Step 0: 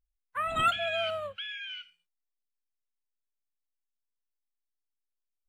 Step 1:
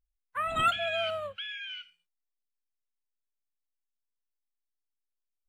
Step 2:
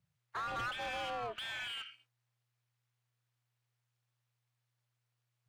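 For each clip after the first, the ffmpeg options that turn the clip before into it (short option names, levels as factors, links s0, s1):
-af anull
-filter_complex "[0:a]aeval=exprs='val(0)*sin(2*PI*120*n/s)':c=same,acrossover=split=130[s0][s1];[s1]acompressor=threshold=0.00562:ratio=2.5[s2];[s0][s2]amix=inputs=2:normalize=0,asplit=2[s3][s4];[s4]highpass=f=720:p=1,volume=17.8,asoftclip=type=tanh:threshold=0.0355[s5];[s3][s5]amix=inputs=2:normalize=0,lowpass=f=2100:p=1,volume=0.501,volume=0.841"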